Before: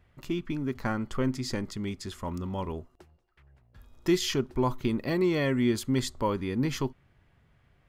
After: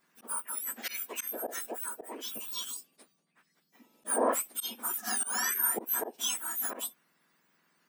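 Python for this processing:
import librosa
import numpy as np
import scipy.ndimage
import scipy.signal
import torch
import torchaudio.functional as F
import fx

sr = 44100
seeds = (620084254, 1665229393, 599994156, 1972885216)

y = fx.octave_mirror(x, sr, pivot_hz=1800.0)
y = fx.auto_swell(y, sr, attack_ms=114.0)
y = y * 10.0 ** (2.5 / 20.0)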